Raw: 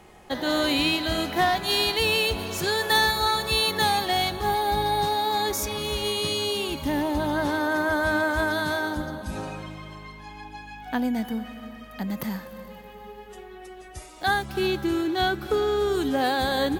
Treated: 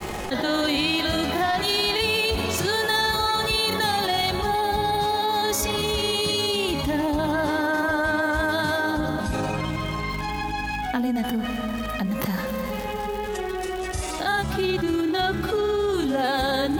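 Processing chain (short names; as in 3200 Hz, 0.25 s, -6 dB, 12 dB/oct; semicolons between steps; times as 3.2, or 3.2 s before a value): crackle 310/s -44 dBFS; grains 96 ms, grains 20/s, spray 21 ms, pitch spread up and down by 0 st; fast leveller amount 70%; gain -1.5 dB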